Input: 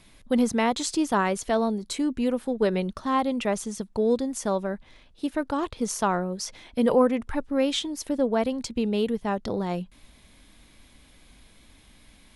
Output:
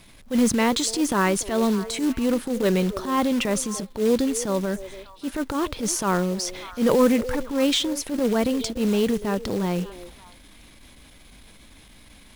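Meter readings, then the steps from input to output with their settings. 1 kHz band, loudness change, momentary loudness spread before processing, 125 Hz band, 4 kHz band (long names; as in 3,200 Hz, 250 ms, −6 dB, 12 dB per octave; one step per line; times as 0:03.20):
0.0 dB, +3.0 dB, 8 LU, +5.0 dB, +5.5 dB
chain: dynamic equaliser 750 Hz, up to −7 dB, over −40 dBFS, Q 2.4
in parallel at −11 dB: gain into a clipping stage and back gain 16.5 dB
on the sum: transient designer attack −10 dB, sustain +4 dB
echo through a band-pass that steps 290 ms, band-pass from 450 Hz, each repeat 1.4 octaves, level −11.5 dB
floating-point word with a short mantissa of 2 bits
level +3 dB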